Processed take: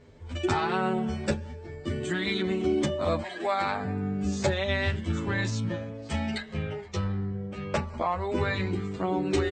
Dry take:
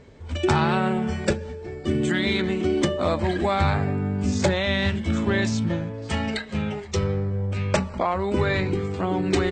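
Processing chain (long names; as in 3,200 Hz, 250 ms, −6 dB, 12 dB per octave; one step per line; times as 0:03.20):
0:03.21–0:03.84: high-pass filter 670 Hz → 170 Hz 12 dB per octave
0:06.48–0:07.88: high-shelf EQ 6,400 Hz −10 dB
barber-pole flanger 9.8 ms +0.62 Hz
level −2 dB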